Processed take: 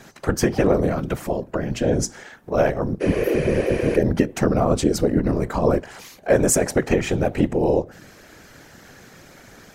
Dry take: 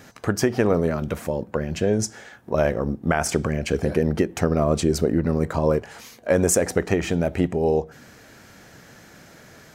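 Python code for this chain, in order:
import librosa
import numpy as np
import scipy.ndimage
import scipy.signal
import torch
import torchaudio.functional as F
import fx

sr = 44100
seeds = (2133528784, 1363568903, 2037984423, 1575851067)

y = fx.spec_repair(x, sr, seeds[0], start_s=3.04, length_s=0.88, low_hz=400.0, high_hz=11000.0, source='after')
y = fx.whisperise(y, sr, seeds[1])
y = y * librosa.db_to_amplitude(1.5)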